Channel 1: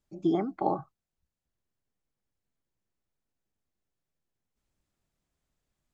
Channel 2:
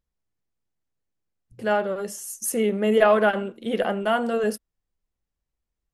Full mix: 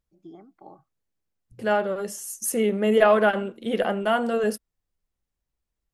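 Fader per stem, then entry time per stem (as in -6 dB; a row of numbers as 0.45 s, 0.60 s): -19.0 dB, 0.0 dB; 0.00 s, 0.00 s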